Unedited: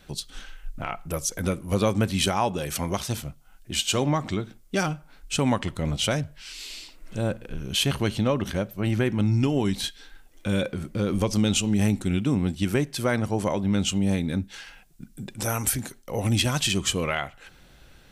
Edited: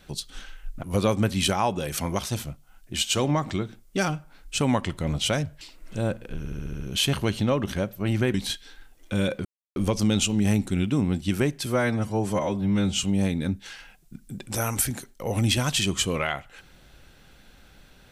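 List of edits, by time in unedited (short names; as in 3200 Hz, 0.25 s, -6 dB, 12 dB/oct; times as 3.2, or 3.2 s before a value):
0.83–1.61 cut
6.39–6.81 cut
7.58 stutter 0.07 s, 7 plays
9.12–9.68 cut
10.79–11.1 mute
13–13.92 stretch 1.5×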